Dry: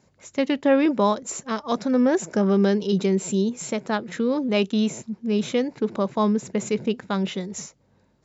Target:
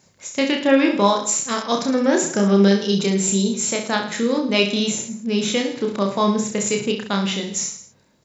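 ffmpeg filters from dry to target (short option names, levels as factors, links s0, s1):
-af "highshelf=f=2100:g=11,aecho=1:1:30|66|109.2|161|223.2:0.631|0.398|0.251|0.158|0.1"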